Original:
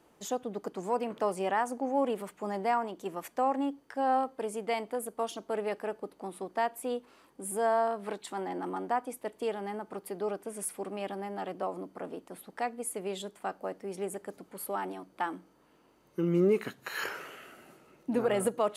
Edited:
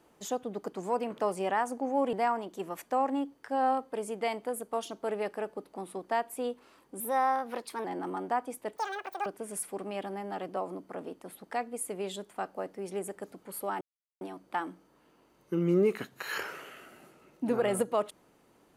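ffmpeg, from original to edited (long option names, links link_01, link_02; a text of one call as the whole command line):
ffmpeg -i in.wav -filter_complex "[0:a]asplit=7[link_01][link_02][link_03][link_04][link_05][link_06][link_07];[link_01]atrim=end=2.132[link_08];[link_02]atrim=start=2.588:end=7.464[link_09];[link_03]atrim=start=7.46:end=8.44,asetpts=PTS-STARTPTS,asetrate=51156,aresample=44100[link_10];[link_04]atrim=start=8.436:end=9.364[link_11];[link_05]atrim=start=9.36:end=10.32,asetpts=PTS-STARTPTS,asetrate=85554,aresample=44100[link_12];[link_06]atrim=start=10.316:end=14.87,asetpts=PTS-STARTPTS,afade=type=out:start_time=4.55:duration=0.004:curve=hsin,apad=pad_dur=0.4[link_13];[link_07]atrim=start=14.87,asetpts=PTS-STARTPTS,afade=type=in:duration=0.004:curve=hsin[link_14];[link_08][link_09]acrossfade=duration=0.004:curve1=hsin:curve2=hsin[link_15];[link_15][link_10]acrossfade=duration=0.004:curve1=hsin:curve2=hsin[link_16];[link_16][link_11]acrossfade=duration=0.004:curve1=hsin:curve2=hsin[link_17];[link_17][link_12]acrossfade=duration=0.004:curve1=hsin:curve2=hsin[link_18];[link_13][link_14]concat=n=2:v=0:a=1[link_19];[link_18][link_19]acrossfade=duration=0.004:curve1=hsin:curve2=hsin" out.wav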